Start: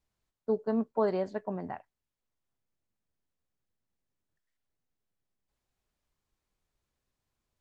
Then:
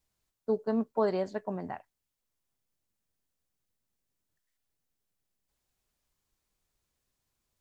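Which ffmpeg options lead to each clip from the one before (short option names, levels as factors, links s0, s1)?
-af "highshelf=f=4200:g=8"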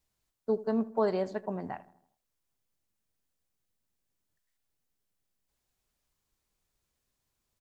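-filter_complex "[0:a]asplit=2[s0][s1];[s1]adelay=80,lowpass=f=1800:p=1,volume=0.126,asplit=2[s2][s3];[s3]adelay=80,lowpass=f=1800:p=1,volume=0.54,asplit=2[s4][s5];[s5]adelay=80,lowpass=f=1800:p=1,volume=0.54,asplit=2[s6][s7];[s7]adelay=80,lowpass=f=1800:p=1,volume=0.54,asplit=2[s8][s9];[s9]adelay=80,lowpass=f=1800:p=1,volume=0.54[s10];[s0][s2][s4][s6][s8][s10]amix=inputs=6:normalize=0"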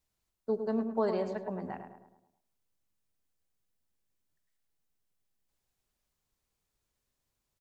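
-filter_complex "[0:a]asplit=2[s0][s1];[s1]adelay=106,lowpass=f=1800:p=1,volume=0.447,asplit=2[s2][s3];[s3]adelay=106,lowpass=f=1800:p=1,volume=0.51,asplit=2[s4][s5];[s5]adelay=106,lowpass=f=1800:p=1,volume=0.51,asplit=2[s6][s7];[s7]adelay=106,lowpass=f=1800:p=1,volume=0.51,asplit=2[s8][s9];[s9]adelay=106,lowpass=f=1800:p=1,volume=0.51,asplit=2[s10][s11];[s11]adelay=106,lowpass=f=1800:p=1,volume=0.51[s12];[s0][s2][s4][s6][s8][s10][s12]amix=inputs=7:normalize=0,volume=0.75"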